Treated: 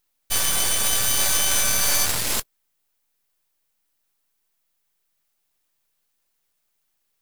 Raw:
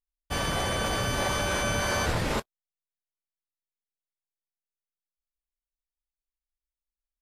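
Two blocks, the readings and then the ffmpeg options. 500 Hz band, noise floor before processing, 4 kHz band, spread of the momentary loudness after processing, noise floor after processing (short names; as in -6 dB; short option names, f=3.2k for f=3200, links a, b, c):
-5.0 dB, under -85 dBFS, +8.5 dB, 6 LU, -73 dBFS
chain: -af "highshelf=f=6.3k:g=7,crystalizer=i=8:c=0,aeval=exprs='max(val(0),0)':c=same,volume=-1.5dB"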